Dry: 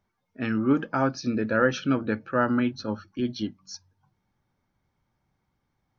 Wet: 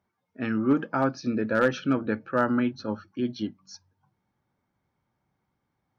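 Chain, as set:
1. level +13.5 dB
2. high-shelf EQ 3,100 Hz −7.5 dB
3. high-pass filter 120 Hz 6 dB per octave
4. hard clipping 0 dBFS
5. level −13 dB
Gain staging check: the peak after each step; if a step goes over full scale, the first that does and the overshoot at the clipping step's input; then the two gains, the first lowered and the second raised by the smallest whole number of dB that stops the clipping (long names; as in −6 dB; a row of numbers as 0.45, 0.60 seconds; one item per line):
+5.0, +4.5, +5.0, 0.0, −13.0 dBFS
step 1, 5.0 dB
step 1 +8.5 dB, step 5 −8 dB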